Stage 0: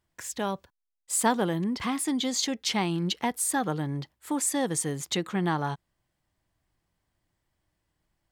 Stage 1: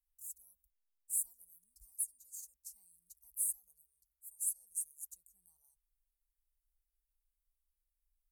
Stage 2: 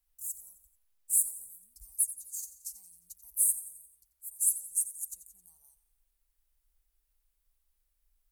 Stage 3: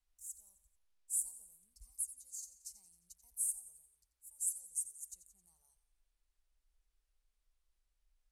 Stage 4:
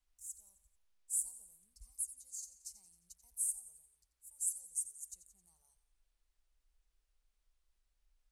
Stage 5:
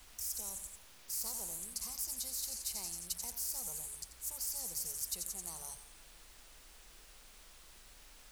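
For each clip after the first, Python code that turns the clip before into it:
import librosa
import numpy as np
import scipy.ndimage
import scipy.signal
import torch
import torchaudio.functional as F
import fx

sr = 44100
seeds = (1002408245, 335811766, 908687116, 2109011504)

y1 = scipy.signal.sosfilt(scipy.signal.cheby2(4, 60, [130.0, 3600.0], 'bandstop', fs=sr, output='sos'), x)
y2 = fx.echo_feedback(y1, sr, ms=88, feedback_pct=51, wet_db=-14.0)
y2 = F.gain(torch.from_numpy(y2), 9.0).numpy()
y3 = scipy.signal.sosfilt(scipy.signal.butter(2, 7200.0, 'lowpass', fs=sr, output='sos'), y2)
y3 = F.gain(torch.from_numpy(y3), -2.5).numpy()
y4 = fx.peak_eq(y3, sr, hz=14000.0, db=-5.5, octaves=0.53)
y4 = F.gain(torch.from_numpy(y4), 1.5).numpy()
y5 = fx.spectral_comp(y4, sr, ratio=10.0)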